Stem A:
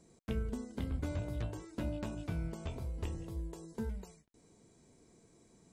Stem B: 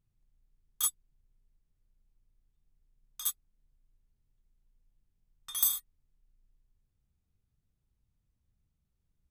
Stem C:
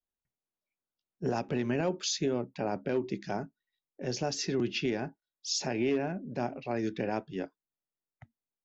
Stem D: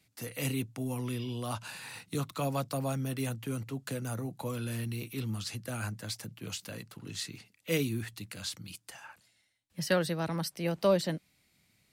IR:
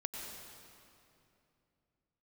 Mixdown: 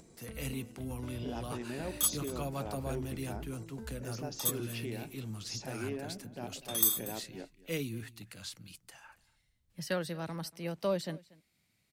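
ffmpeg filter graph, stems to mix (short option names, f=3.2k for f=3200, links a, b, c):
-filter_complex "[0:a]alimiter=level_in=11dB:limit=-24dB:level=0:latency=1:release=260,volume=-11dB,acompressor=mode=upward:threshold=-49dB:ratio=2.5,volume=-2dB[a];[1:a]adelay=1200,volume=0.5dB,asplit=2[b][c];[c]volume=-19dB[d];[2:a]volume=-10dB,asplit=2[e][f];[f]volume=-18dB[g];[3:a]volume=-6dB,asplit=2[h][i];[i]volume=-22.5dB[j];[d][g][j]amix=inputs=3:normalize=0,aecho=0:1:236:1[k];[a][b][e][h][k]amix=inputs=5:normalize=0"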